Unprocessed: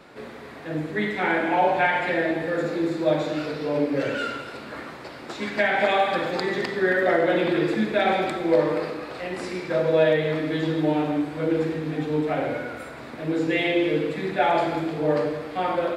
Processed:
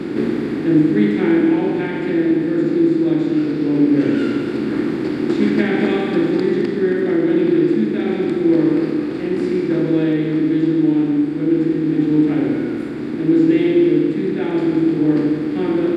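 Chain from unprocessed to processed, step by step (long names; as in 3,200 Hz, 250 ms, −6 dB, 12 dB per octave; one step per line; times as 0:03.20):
compressor on every frequency bin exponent 0.6
low shelf with overshoot 450 Hz +11 dB, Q 3
speech leveller 2 s
level −9 dB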